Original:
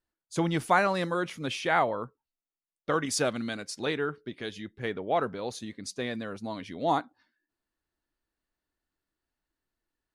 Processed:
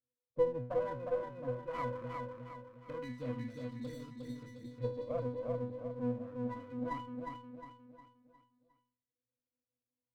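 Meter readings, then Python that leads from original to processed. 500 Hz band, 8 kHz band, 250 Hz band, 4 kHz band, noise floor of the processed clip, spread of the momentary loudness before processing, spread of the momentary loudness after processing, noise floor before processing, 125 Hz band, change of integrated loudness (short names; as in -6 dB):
-5.5 dB, under -25 dB, -8.0 dB, -22.5 dB, under -85 dBFS, 13 LU, 13 LU, under -85 dBFS, -5.0 dB, -9.5 dB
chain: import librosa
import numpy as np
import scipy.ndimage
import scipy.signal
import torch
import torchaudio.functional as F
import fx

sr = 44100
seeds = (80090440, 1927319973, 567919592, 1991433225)

p1 = fx.filter_lfo_lowpass(x, sr, shape='saw_up', hz=0.22, low_hz=450.0, high_hz=6000.0, q=5.9)
p2 = fx.low_shelf(p1, sr, hz=480.0, db=5.0)
p3 = fx.octave_resonator(p2, sr, note='B', decay_s=0.42)
p4 = p3 + fx.echo_feedback(p3, sr, ms=358, feedback_pct=43, wet_db=-4.0, dry=0)
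p5 = fx.running_max(p4, sr, window=9)
y = p5 * 10.0 ** (1.5 / 20.0)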